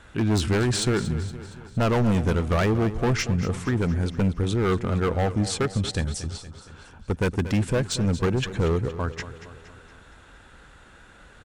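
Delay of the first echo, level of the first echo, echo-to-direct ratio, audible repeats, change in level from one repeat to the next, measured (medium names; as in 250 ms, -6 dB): 233 ms, -13.5 dB, -12.0 dB, 4, -5.5 dB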